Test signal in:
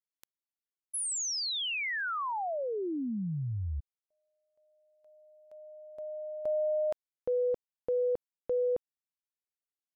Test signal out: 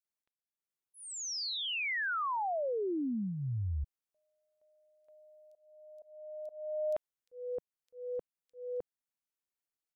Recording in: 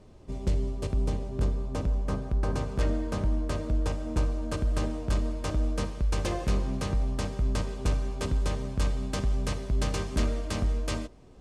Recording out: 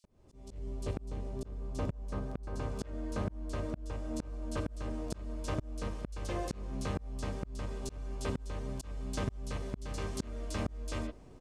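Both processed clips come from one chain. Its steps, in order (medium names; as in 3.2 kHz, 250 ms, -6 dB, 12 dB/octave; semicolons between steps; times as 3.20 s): bands offset in time highs, lows 40 ms, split 3.8 kHz; dynamic bell 160 Hz, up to -5 dB, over -49 dBFS, Q 4.3; slow attack 546 ms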